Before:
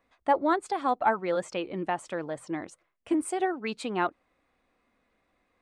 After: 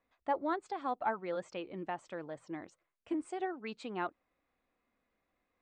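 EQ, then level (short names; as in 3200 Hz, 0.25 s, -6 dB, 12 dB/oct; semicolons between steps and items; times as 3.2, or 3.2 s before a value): steep low-pass 8400 Hz 48 dB/oct; air absorption 50 m; -9.0 dB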